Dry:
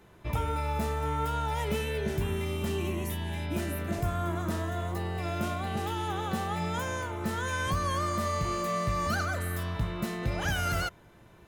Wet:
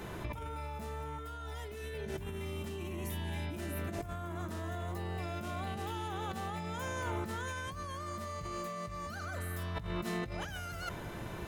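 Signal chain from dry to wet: 1.18–1.94 comb 2.8 ms, depth 97%; negative-ratio compressor -42 dBFS, ratio -1; gain +2.5 dB

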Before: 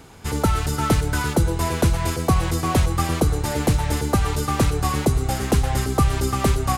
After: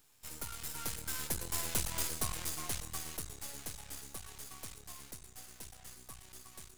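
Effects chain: Doppler pass-by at 1.87, 18 m/s, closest 11 m; pre-emphasis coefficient 0.9; half-wave rectifier; gain +2 dB

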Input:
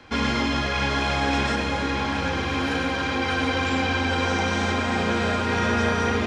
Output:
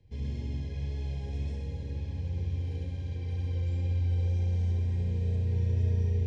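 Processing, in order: EQ curve 140 Hz 0 dB, 260 Hz -23 dB, 420 Hz -14 dB, 730 Hz -28 dB, 1300 Hz -30 dB, 5600 Hz -23 dB; wow and flutter 17 cents; Butterworth band-stop 1300 Hz, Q 1.8; on a send: flutter echo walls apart 11.7 m, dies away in 0.84 s; on the sum: gain -3 dB

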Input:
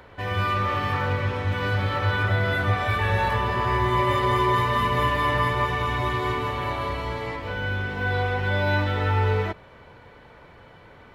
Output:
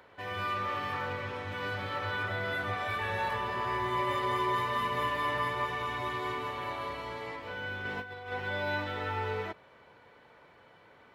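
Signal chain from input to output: HPF 290 Hz 6 dB/oct; 7.85–8.32 negative-ratio compressor -31 dBFS, ratio -0.5; gain -7.5 dB

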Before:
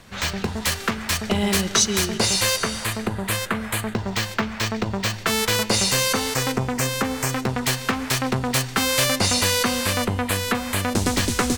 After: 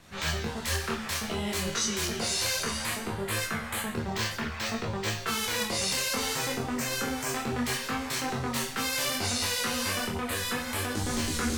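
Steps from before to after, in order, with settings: in parallel at +2 dB: negative-ratio compressor -25 dBFS; on the sum: vibrato 11 Hz 24 cents; resonator 78 Hz, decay 0.47 s, harmonics all, mix 90%; chorus voices 2, 0.59 Hz, delay 23 ms, depth 4.5 ms

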